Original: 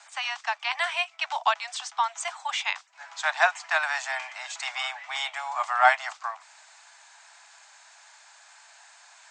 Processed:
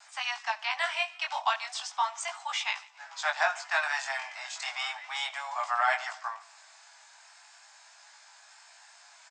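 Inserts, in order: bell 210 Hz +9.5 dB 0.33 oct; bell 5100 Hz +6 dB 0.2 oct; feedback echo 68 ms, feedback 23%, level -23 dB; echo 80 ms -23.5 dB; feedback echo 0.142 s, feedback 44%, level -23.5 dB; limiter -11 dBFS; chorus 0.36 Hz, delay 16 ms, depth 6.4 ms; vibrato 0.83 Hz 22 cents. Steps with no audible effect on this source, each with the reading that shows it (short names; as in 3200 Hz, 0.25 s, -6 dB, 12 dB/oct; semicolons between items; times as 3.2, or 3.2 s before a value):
bell 210 Hz: input band starts at 540 Hz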